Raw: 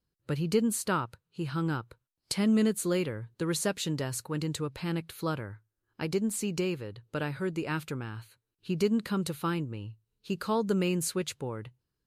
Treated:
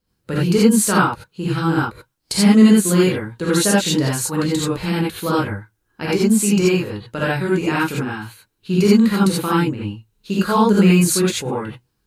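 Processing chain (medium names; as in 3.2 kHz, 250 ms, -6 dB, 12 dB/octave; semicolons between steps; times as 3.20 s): gated-style reverb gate 110 ms rising, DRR -7 dB; trim +6.5 dB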